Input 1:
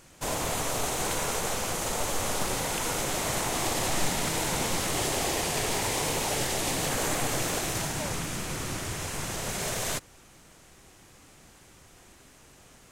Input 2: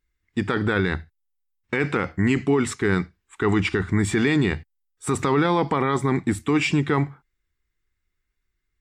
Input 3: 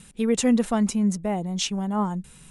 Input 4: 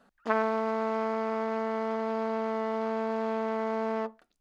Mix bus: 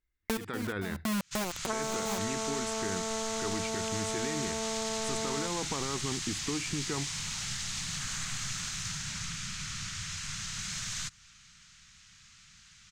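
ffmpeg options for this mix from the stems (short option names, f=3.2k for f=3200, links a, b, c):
-filter_complex "[0:a]firequalizer=gain_entry='entry(190,0);entry(320,-25);entry(550,-25);entry(1300,4);entry(4100,11);entry(6700,8);entry(11000,-14)':delay=0.05:min_phase=1,adelay=1100,volume=-6.5dB[a];[1:a]volume=-8dB,asplit=2[b][c];[2:a]highshelf=f=3k:g=-10,adynamicsmooth=sensitivity=2.5:basefreq=1.1k,acrusher=bits=3:mix=0:aa=0.000001,adelay=100,volume=3dB[d];[3:a]adelay=1400,volume=2.5dB[e];[c]apad=whole_len=114800[f];[d][f]sidechaincompress=threshold=-46dB:ratio=10:attack=16:release=141[g];[a][b][g][e]amix=inputs=4:normalize=0,acrossover=split=1200|6700[h][i][j];[h]acompressor=threshold=-33dB:ratio=4[k];[i]acompressor=threshold=-40dB:ratio=4[l];[j]acompressor=threshold=-38dB:ratio=4[m];[k][l][m]amix=inputs=3:normalize=0"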